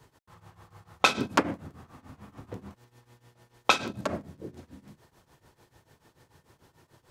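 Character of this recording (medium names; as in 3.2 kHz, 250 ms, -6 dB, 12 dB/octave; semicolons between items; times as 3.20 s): tremolo triangle 6.8 Hz, depth 90%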